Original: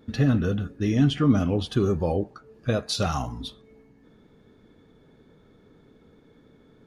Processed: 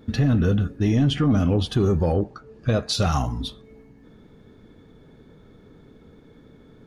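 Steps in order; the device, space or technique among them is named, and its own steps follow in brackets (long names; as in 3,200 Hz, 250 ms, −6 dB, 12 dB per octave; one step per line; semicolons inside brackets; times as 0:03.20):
0:02.13–0:02.93: low-pass filter 8,600 Hz 12 dB per octave
low-shelf EQ 150 Hz +5.5 dB
soft clipper into limiter (soft clipping −11.5 dBFS, distortion −19 dB; brickwall limiter −17 dBFS, peak gain reduction 5 dB)
level +4 dB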